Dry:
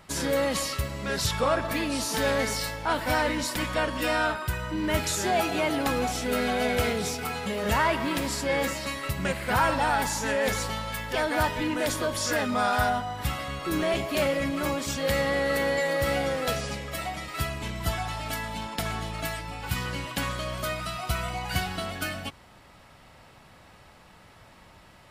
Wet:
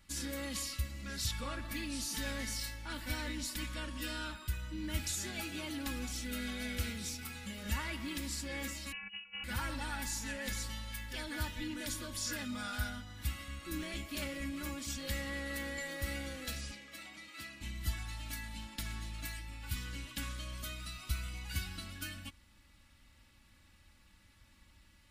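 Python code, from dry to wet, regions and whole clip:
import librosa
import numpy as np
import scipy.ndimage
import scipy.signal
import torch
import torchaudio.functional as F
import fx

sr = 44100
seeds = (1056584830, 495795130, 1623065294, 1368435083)

y = fx.chain(x, sr, fx.over_compress(threshold_db=-34.0, ratio=-0.5),
    fx.robotise(hz=300.0),
    fx.freq_invert(carrier_hz=2900), at=(8.92, 9.44))
y = fx.chain(y, sr, fx.highpass(hz=250.0, slope=12),
    fx.high_shelf(hz=6500.0, db=-10.5), at=(16.71, 17.61))
y = fx.tone_stack(y, sr, knobs='6-0-2')
y = y + 0.65 * np.pad(y, (int(3.5 * sr / 1000.0), 0))[:len(y)]
y = F.gain(torch.from_numpy(y), 5.5).numpy()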